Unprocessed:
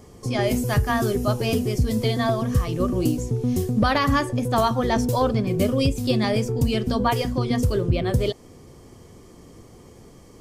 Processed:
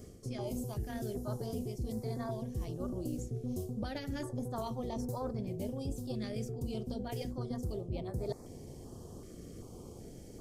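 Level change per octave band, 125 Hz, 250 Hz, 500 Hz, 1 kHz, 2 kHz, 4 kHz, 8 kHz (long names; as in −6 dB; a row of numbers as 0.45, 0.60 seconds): −15.5, −15.5, −16.0, −20.5, −23.5, −20.5, −15.0 decibels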